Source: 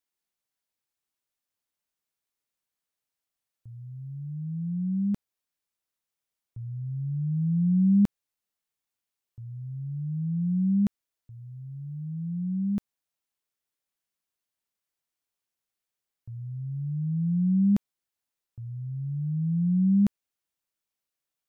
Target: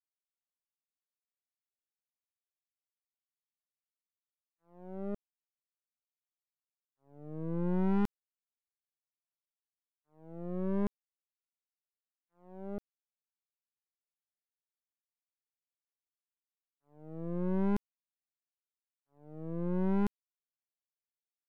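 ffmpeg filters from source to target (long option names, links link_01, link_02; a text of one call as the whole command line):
ffmpeg -i in.wav -af "aeval=exprs='(tanh(12.6*val(0)+0.3)-tanh(0.3))/12.6':channel_layout=same,acrusher=bits=3:mix=0:aa=0.5,volume=-4.5dB" out.wav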